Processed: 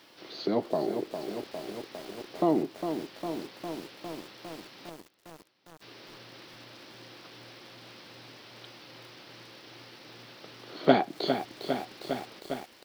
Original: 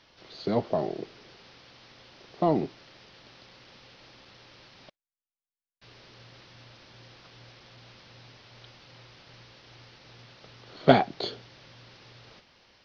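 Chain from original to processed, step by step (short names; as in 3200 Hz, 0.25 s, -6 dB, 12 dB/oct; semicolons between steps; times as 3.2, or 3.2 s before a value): HPF 180 Hz 12 dB/oct; bell 320 Hz +6.5 dB 0.51 oct; in parallel at +3 dB: compressor 8:1, threshold -37 dBFS, peak gain reduction 25 dB; on the sum: requantised 10-bit, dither none; echo 0.834 s -21.5 dB; lo-fi delay 0.405 s, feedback 80%, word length 7-bit, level -7.5 dB; gain -4.5 dB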